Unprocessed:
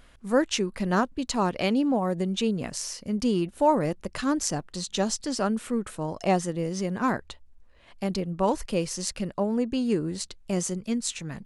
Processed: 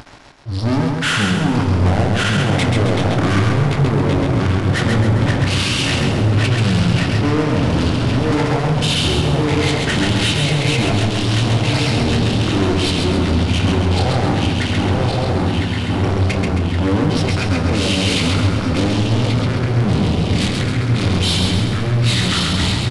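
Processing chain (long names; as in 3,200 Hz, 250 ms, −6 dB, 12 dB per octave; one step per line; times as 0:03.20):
feedback delay that plays each chunk backwards 280 ms, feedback 78%, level −7 dB
high-pass filter 110 Hz 12 dB per octave
parametric band 1,000 Hz −3.5 dB 0.23 octaves
in parallel at +1 dB: output level in coarse steps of 12 dB
on the sum: brickwall limiter −13 dBFS, peak gain reduction 7 dB
reversed playback
upward compression, threshold −34 dBFS
reversed playback
leveller curve on the samples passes 5
flanger 0.93 Hz, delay 8.5 ms, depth 7.4 ms, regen −38%
repeating echo 67 ms, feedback 50%, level −3.5 dB
wrong playback speed 15 ips tape played at 7.5 ips
level +1.5 dB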